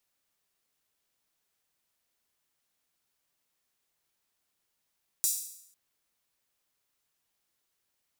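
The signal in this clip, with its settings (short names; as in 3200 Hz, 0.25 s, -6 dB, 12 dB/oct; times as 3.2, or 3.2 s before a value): open hi-hat length 0.50 s, high-pass 6900 Hz, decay 0.72 s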